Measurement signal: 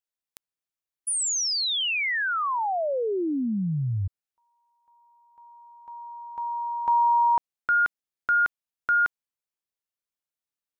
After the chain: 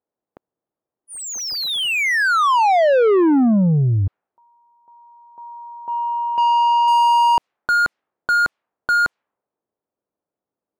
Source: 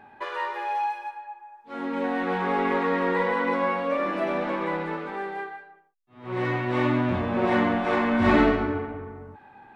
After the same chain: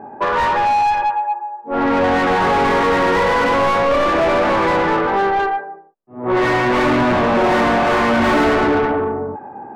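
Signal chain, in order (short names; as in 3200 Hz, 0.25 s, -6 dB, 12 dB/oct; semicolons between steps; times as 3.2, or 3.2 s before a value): low-pass opened by the level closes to 480 Hz, open at -20 dBFS; overdrive pedal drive 34 dB, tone 1200 Hz, clips at -6.5 dBFS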